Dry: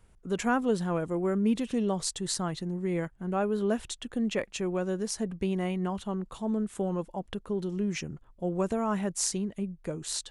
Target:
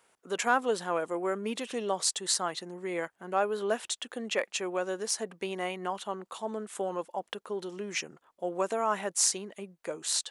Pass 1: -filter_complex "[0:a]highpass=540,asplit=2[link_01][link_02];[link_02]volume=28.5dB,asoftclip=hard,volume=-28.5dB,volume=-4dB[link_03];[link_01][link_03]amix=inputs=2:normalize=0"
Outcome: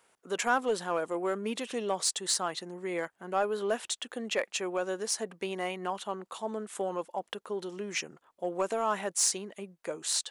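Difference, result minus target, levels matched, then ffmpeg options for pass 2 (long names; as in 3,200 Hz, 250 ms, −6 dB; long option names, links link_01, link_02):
gain into a clipping stage and back: distortion +11 dB
-filter_complex "[0:a]highpass=540,asplit=2[link_01][link_02];[link_02]volume=21dB,asoftclip=hard,volume=-21dB,volume=-4dB[link_03];[link_01][link_03]amix=inputs=2:normalize=0"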